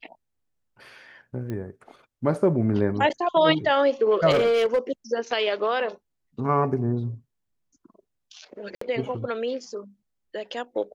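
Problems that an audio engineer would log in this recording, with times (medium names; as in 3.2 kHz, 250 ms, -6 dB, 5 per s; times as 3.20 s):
1.50 s: pop -21 dBFS
4.30–4.79 s: clipped -16.5 dBFS
8.75–8.81 s: dropout 64 ms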